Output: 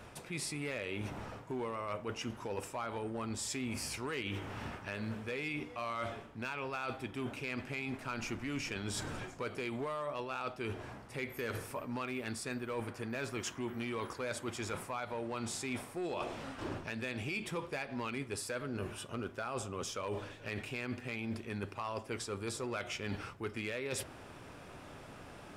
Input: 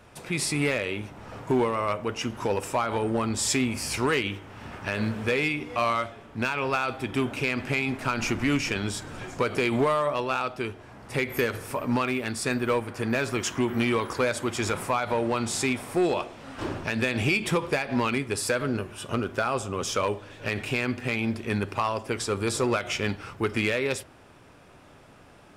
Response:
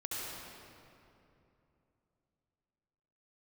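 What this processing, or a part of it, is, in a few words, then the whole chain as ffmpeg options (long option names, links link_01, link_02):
compression on the reversed sound: -af "areverse,acompressor=threshold=-38dB:ratio=8,areverse,volume=1.5dB"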